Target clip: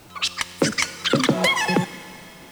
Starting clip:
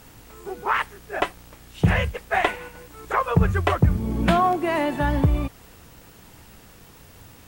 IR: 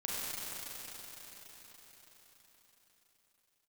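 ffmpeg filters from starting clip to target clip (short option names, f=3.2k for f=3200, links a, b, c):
-filter_complex "[0:a]asplit=2[a][b];[b]bass=f=250:g=-6,treble=f=4k:g=14[c];[1:a]atrim=start_sample=2205,asetrate=25137,aresample=44100[d];[c][d]afir=irnorm=-1:irlink=0,volume=-21.5dB[e];[a][e]amix=inputs=2:normalize=0,asetrate=130977,aresample=44100"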